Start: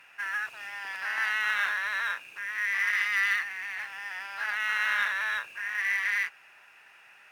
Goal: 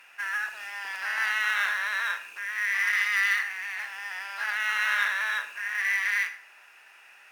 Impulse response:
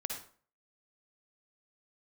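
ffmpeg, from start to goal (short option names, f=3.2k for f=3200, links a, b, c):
-filter_complex "[0:a]bass=f=250:g=-11,treble=f=4k:g=4,asplit=2[a][b];[1:a]atrim=start_sample=2205[c];[b][c]afir=irnorm=-1:irlink=0,volume=-5.5dB[d];[a][d]amix=inputs=2:normalize=0,volume=-2dB"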